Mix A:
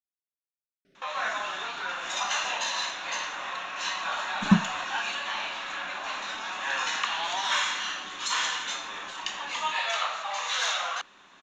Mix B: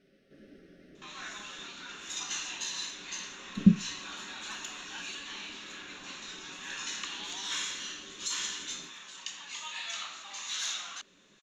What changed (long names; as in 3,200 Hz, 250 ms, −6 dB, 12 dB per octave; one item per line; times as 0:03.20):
speech: entry −0.85 s
background: add first difference